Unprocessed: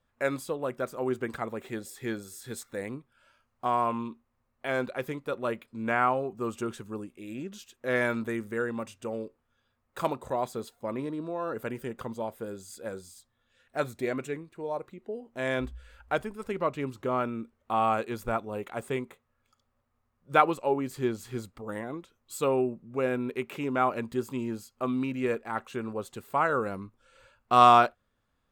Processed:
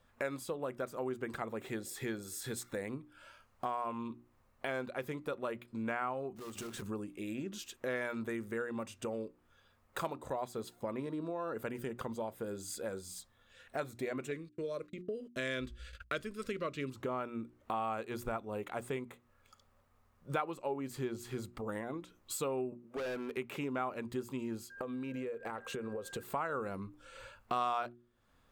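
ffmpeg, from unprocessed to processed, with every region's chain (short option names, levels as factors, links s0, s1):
-filter_complex "[0:a]asettb=1/sr,asplit=3[s0][s1][s2];[s0]atrim=end=6.364[s3];[s1]atrim=start=6.36:end=6.82,asetpts=PTS-STARTPTS,afade=t=in:d=0.004:c=qsin,afade=t=out:st=0.456:d=0.004:c=qsin,bandreject=f=50:t=h:w=6,bandreject=f=100:t=h:w=6,bandreject=f=150:t=h:w=6,bandreject=f=200:t=h:w=6,bandreject=f=250:t=h:w=6,bandreject=f=300:t=h:w=6,acompressor=threshold=0.00631:ratio=8:attack=3.2:release=140:knee=1:detection=peak,acrusher=bits=2:mode=log:mix=0:aa=0.000001[s4];[s2]atrim=start=6.816[s5];[s3][s4]acrossfade=d=0.004:c1=hsin:c2=qsin[s6];[s6][s5]acrossfade=d=0.004:c1=qsin:c2=hsin,asettb=1/sr,asplit=3[s7][s8][s9];[s7]atrim=end=14.314[s10];[s8]atrim=start=14.31:end=16.9,asetpts=PTS-STARTPTS,afade=t=in:d=0.004:c=qsin,afade=t=out:st=2.586:d=0.004:c=qsin,agate=range=0.0112:threshold=0.00224:ratio=16:release=100:detection=peak,asuperstop=centerf=830:order=4:qfactor=1.6,equalizer=f=4500:w=0.75:g=8.5[s11];[s9]atrim=start=16.896[s12];[s10][s11]acrossfade=d=0.004:c1=hsin:c2=qsin[s13];[s13][s12]acrossfade=d=0.004:c1=qsin:c2=hsin,asettb=1/sr,asplit=3[s14][s15][s16];[s14]atrim=end=22.724[s17];[s15]atrim=start=22.72:end=23.37,asetpts=PTS-STARTPTS,afade=t=in:d=0.004:c=qsin,afade=t=out:st=0.646:d=0.004:c=qsin,highpass=370,volume=50.1,asoftclip=hard,volume=0.02[s18];[s16]atrim=start=23.366[s19];[s17][s18]acrossfade=d=0.004:c1=hsin:c2=qsin[s20];[s20][s19]acrossfade=d=0.004:c1=qsin:c2=hsin,asettb=1/sr,asplit=3[s21][s22][s23];[s21]atrim=end=24.704[s24];[s22]atrim=start=24.7:end=26.23,asetpts=PTS-STARTPTS,afade=t=in:d=0.004:c=qsin,afade=t=out:st=1.526:d=0.004:c=qsin,equalizer=f=490:w=4.1:g=12.5,aeval=exprs='val(0)+0.00251*sin(2*PI*1600*n/s)':c=same,acompressor=threshold=0.0178:ratio=10:attack=3.2:release=140:knee=1:detection=peak[s25];[s23]atrim=start=26.226[s26];[s24][s25]acrossfade=d=0.004:c1=hsin:c2=qsin[s27];[s27][s26]acrossfade=d=0.004:c1=qsin:c2=hsin,bandreject=f=60:t=h:w=6,bandreject=f=120:t=h:w=6,bandreject=f=180:t=h:w=6,bandreject=f=240:t=h:w=6,bandreject=f=300:t=h:w=6,bandreject=f=360:t=h:w=6,acompressor=threshold=0.00447:ratio=3,volume=2.24"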